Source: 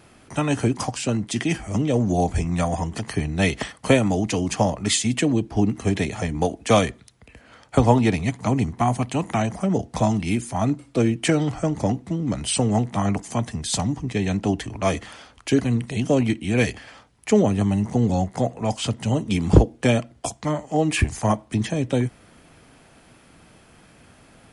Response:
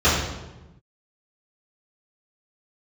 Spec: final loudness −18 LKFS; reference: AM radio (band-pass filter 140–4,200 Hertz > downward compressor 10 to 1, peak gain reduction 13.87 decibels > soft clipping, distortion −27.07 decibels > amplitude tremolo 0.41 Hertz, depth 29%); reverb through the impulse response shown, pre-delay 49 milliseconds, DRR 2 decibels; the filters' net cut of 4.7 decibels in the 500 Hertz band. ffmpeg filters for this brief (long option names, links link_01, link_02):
-filter_complex "[0:a]equalizer=frequency=500:width_type=o:gain=-6,asplit=2[link_01][link_02];[1:a]atrim=start_sample=2205,adelay=49[link_03];[link_02][link_03]afir=irnorm=-1:irlink=0,volume=-24dB[link_04];[link_01][link_04]amix=inputs=2:normalize=0,highpass=140,lowpass=4200,acompressor=threshold=-24dB:ratio=10,asoftclip=threshold=-16dB,tremolo=f=0.41:d=0.29,volume=13dB"